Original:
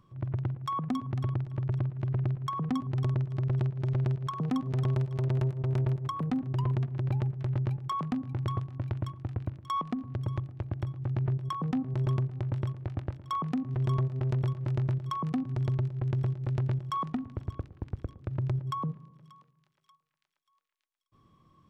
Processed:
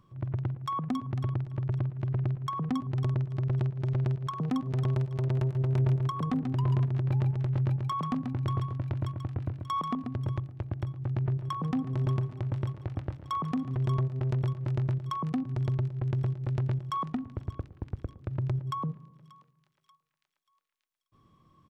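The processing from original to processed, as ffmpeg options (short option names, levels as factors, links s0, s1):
-filter_complex "[0:a]asplit=3[s0][s1][s2];[s0]afade=t=out:st=5.54:d=0.02[s3];[s1]aecho=1:1:137:0.501,afade=t=in:st=5.54:d=0.02,afade=t=out:st=10.32:d=0.02[s4];[s2]afade=t=in:st=10.32:d=0.02[s5];[s3][s4][s5]amix=inputs=3:normalize=0,asplit=3[s6][s7][s8];[s6]afade=t=out:st=11.34:d=0.02[s9];[s7]aecho=1:1:143|286|429|572|715:0.188|0.102|0.0549|0.0297|0.016,afade=t=in:st=11.34:d=0.02,afade=t=out:st=13.75:d=0.02[s10];[s8]afade=t=in:st=13.75:d=0.02[s11];[s9][s10][s11]amix=inputs=3:normalize=0"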